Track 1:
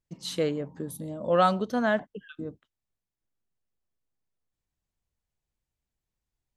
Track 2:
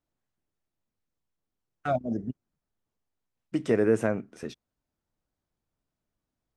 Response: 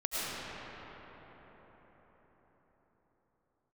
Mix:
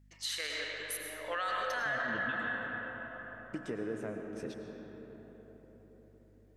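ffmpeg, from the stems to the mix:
-filter_complex "[0:a]highpass=1.4k,equalizer=f=1.8k:w=2.7:g=12,acompressor=threshold=-34dB:ratio=3,volume=-0.5dB,asplit=2[a][b];[b]volume=-3.5dB[c];[1:a]aeval=exprs='val(0)+0.00158*(sin(2*PI*50*n/s)+sin(2*PI*2*50*n/s)/2+sin(2*PI*3*50*n/s)/3+sin(2*PI*4*50*n/s)/4+sin(2*PI*5*50*n/s)/5)':c=same,acompressor=threshold=-35dB:ratio=3,volume=-6.5dB,asplit=2[d][e];[e]volume=-9dB[f];[2:a]atrim=start_sample=2205[g];[c][f]amix=inputs=2:normalize=0[h];[h][g]afir=irnorm=-1:irlink=0[i];[a][d][i]amix=inputs=3:normalize=0,alimiter=level_in=2dB:limit=-24dB:level=0:latency=1:release=32,volume=-2dB"

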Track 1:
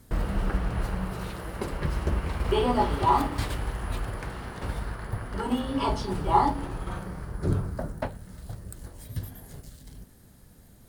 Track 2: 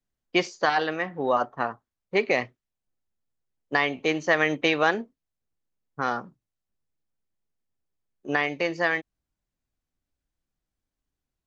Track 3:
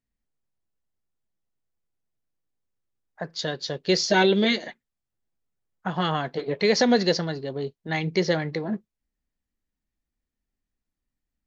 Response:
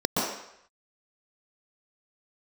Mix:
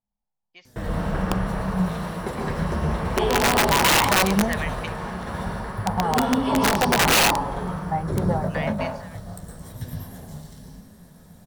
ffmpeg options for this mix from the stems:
-filter_complex "[0:a]flanger=delay=7.8:depth=5.6:regen=53:speed=1.2:shape=sinusoidal,adelay=650,volume=2dB,asplit=3[a][b][c];[b]volume=-6.5dB[d];[c]volume=-6.5dB[e];[1:a]equalizer=f=3.9k:w=0.49:g=6.5,adelay=200,volume=-11dB[f];[2:a]lowpass=f=850:t=q:w=4.9,equalizer=f=200:t=o:w=0.2:g=13,volume=-3.5dB,asplit=2[g][h];[h]apad=whole_len=514334[i];[f][i]sidechaingate=range=-17dB:threshold=-54dB:ratio=16:detection=peak[j];[3:a]atrim=start_sample=2205[k];[d][k]afir=irnorm=-1:irlink=0[l];[e]aecho=0:1:110|220|330|440|550|660|770|880|990|1100:1|0.6|0.36|0.216|0.13|0.0778|0.0467|0.028|0.0168|0.0101[m];[a][j][g][l][m]amix=inputs=5:normalize=0,equalizer=f=330:w=1.2:g=-9.5,aeval=exprs='(mod(3.98*val(0)+1,2)-1)/3.98':c=same"

